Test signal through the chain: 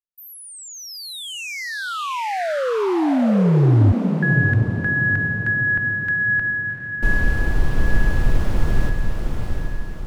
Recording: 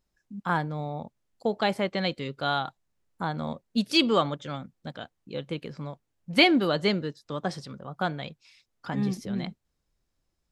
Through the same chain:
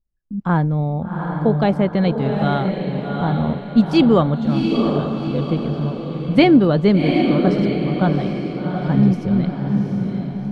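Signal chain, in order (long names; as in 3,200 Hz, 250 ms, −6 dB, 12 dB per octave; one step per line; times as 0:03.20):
noise gate with hold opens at −49 dBFS
spectral tilt −4 dB per octave
feedback delay with all-pass diffusion 754 ms, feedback 47%, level −4 dB
level +4 dB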